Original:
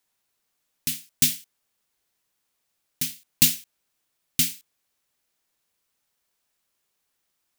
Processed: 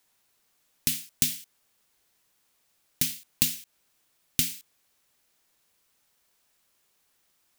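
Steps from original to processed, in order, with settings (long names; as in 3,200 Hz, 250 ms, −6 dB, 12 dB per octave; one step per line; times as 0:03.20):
downward compressor 6 to 1, threshold −28 dBFS, peak gain reduction 15 dB
level +6 dB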